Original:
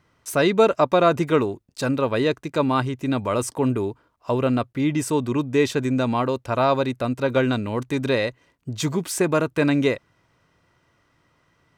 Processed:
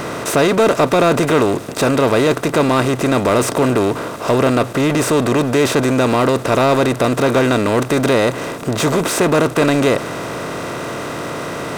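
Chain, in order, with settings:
compressor on every frequency bin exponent 0.4
power curve on the samples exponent 0.7
level −2.5 dB

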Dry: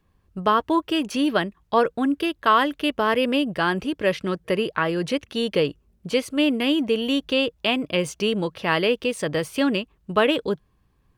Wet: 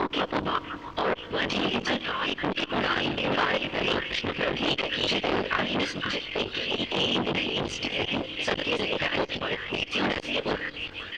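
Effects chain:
slices reordered back to front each 187 ms, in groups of 5
meter weighting curve D
compressor whose output falls as the input rises −20 dBFS, ratio −0.5
background noise pink −46 dBFS
random phases in short frames
in parallel at −5 dB: asymmetric clip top −23 dBFS
on the sum: high-frequency loss of the air 200 metres
double-tracking delay 21 ms −2 dB
echo through a band-pass that steps 511 ms, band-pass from 1,600 Hz, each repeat 0.7 octaves, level −5.5 dB
convolution reverb RT60 2.6 s, pre-delay 3 ms, DRR 17.5 dB
saturating transformer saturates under 1,700 Hz
level −5 dB

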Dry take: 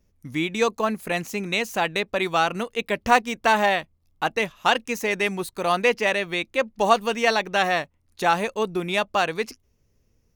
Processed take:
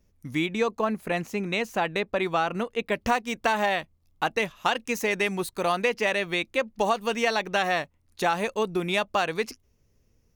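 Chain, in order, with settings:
0:00.46–0:02.92: high-shelf EQ 3,200 Hz −9.5 dB
downward compressor 6 to 1, threshold −20 dBFS, peak gain reduction 9 dB

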